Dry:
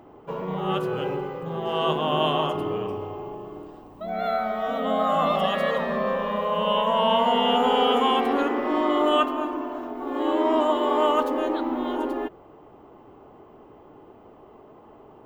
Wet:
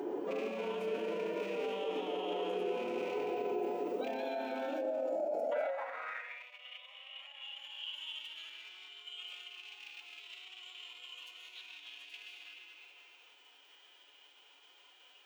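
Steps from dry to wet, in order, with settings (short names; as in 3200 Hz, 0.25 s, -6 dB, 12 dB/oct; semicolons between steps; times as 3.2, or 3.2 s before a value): rattling part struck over -38 dBFS, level -26 dBFS; low shelf 190 Hz +6 dB; notches 60/120/180 Hz; compressor 16:1, threshold -27 dBFS, peak gain reduction 12.5 dB; fifteen-band EQ 100 Hz -6 dB, 1000 Hz -7 dB, 6300 Hz +5 dB; spectral gain 4.74–5.52, 730–4200 Hz -24 dB; resonator 120 Hz, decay 0.79 s, harmonics all, mix 70%; spectral gain 4.81–7.42, 400–2500 Hz +12 dB; on a send at -3 dB: reverb RT60 2.3 s, pre-delay 0.115 s; on the sum: limiter -47 dBFS, peak gain reduction 28.5 dB; formant-preserving pitch shift +3 st; high-pass sweep 370 Hz -> 3100 Hz, 5.41–6.49; gain +14.5 dB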